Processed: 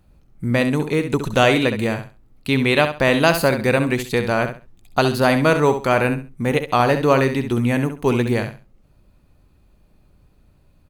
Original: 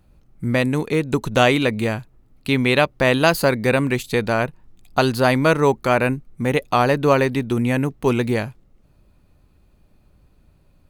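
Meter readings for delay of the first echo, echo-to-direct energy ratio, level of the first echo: 67 ms, -9.0 dB, -9.0 dB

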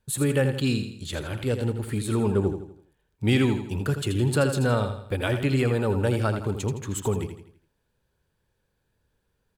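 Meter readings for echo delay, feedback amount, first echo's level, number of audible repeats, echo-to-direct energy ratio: 82 ms, 43%, -8.5 dB, 4, -7.5 dB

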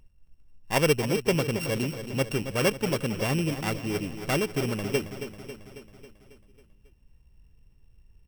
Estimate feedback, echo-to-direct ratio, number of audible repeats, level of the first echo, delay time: 59%, -8.5 dB, 6, -10.5 dB, 0.273 s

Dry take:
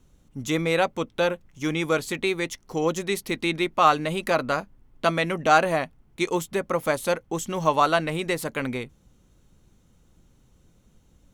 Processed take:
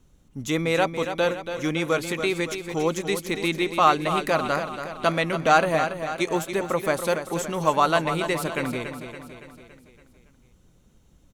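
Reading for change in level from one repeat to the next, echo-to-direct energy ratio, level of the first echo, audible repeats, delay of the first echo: -5.5 dB, -7.5 dB, -9.0 dB, 5, 0.282 s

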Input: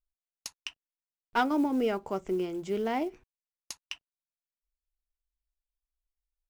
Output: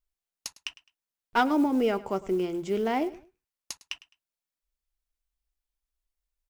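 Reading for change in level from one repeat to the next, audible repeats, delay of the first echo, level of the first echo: -11.5 dB, 2, 0.105 s, -19.0 dB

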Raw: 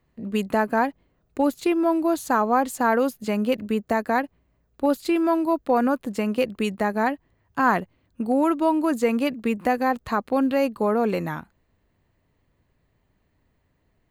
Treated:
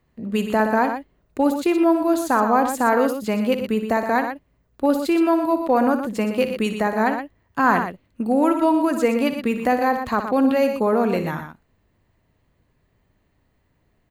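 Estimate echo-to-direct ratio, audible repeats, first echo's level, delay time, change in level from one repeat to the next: -6.5 dB, 2, -10.5 dB, 60 ms, +2.0 dB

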